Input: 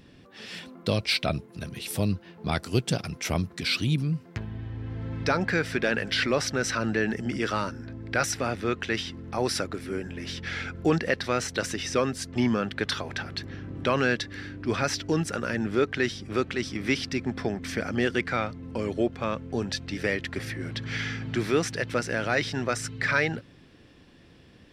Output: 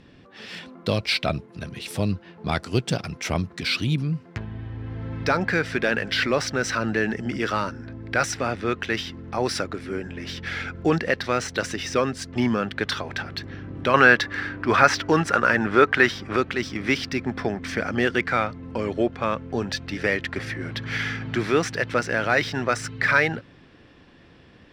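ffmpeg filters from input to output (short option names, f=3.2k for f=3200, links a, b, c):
-af "asetnsamples=n=441:p=0,asendcmd='13.94 equalizer g 13.5;16.36 equalizer g 5',equalizer=f=1.2k:w=0.58:g=2.5,adynamicsmooth=sensitivity=8:basefreq=7.2k,volume=1.5dB"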